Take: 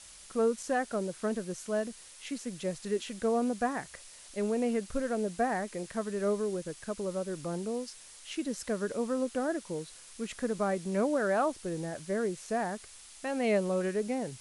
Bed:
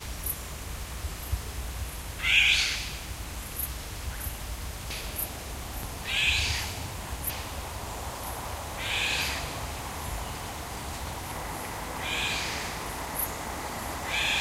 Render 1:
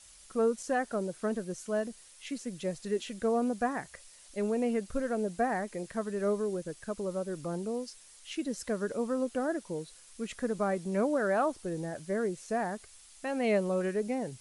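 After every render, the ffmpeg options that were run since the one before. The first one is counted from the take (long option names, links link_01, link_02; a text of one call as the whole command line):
ffmpeg -i in.wav -af "afftdn=noise_reduction=6:noise_floor=-52" out.wav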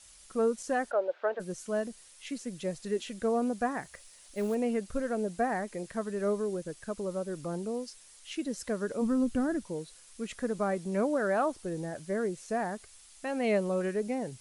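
ffmpeg -i in.wav -filter_complex "[0:a]asplit=3[link_01][link_02][link_03];[link_01]afade=type=out:start_time=0.9:duration=0.02[link_04];[link_02]highpass=frequency=410:width=0.5412,highpass=frequency=410:width=1.3066,equalizer=frequency=570:width_type=q:width=4:gain=9,equalizer=frequency=830:width_type=q:width=4:gain=8,equalizer=frequency=1500:width_type=q:width=4:gain=6,lowpass=frequency=3400:width=0.5412,lowpass=frequency=3400:width=1.3066,afade=type=in:start_time=0.9:duration=0.02,afade=type=out:start_time=1.39:duration=0.02[link_05];[link_03]afade=type=in:start_time=1.39:duration=0.02[link_06];[link_04][link_05][link_06]amix=inputs=3:normalize=0,asettb=1/sr,asplit=3[link_07][link_08][link_09];[link_07]atrim=end=3.824[link_10];[link_08]atrim=start=3.82:end=4.55,asetpts=PTS-STARTPTS,afade=type=in:duration=0.004:curve=qsin,afade=type=out:start_time=0.726:duration=0.004:curve=qsin,acrusher=bits=6:mode=log:mix=0:aa=0.000001[link_11];[link_09]atrim=start=4.546[link_12];[link_10][link_11]acrossfade=duration=0.004:curve1=hsin:curve2=qsin[link_13];[link_13][link_12]acrossfade=duration=0.004:curve1=qsin:curve2=hsin,asplit=3[link_14][link_15][link_16];[link_14]afade=type=out:start_time=9.01:duration=0.02[link_17];[link_15]asubboost=boost=8:cutoff=180,afade=type=in:start_time=9.01:duration=0.02,afade=type=out:start_time=9.64:duration=0.02[link_18];[link_16]afade=type=in:start_time=9.64:duration=0.02[link_19];[link_17][link_18][link_19]amix=inputs=3:normalize=0" out.wav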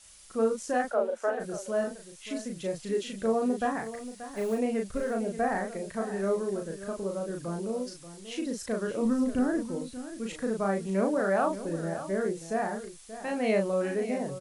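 ffmpeg -i in.wav -filter_complex "[0:a]asplit=2[link_01][link_02];[link_02]adelay=36,volume=-3dB[link_03];[link_01][link_03]amix=inputs=2:normalize=0,aecho=1:1:582:0.224" out.wav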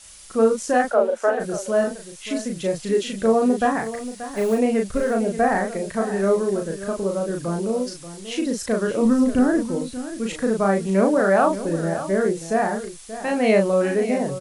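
ffmpeg -i in.wav -af "volume=9dB" out.wav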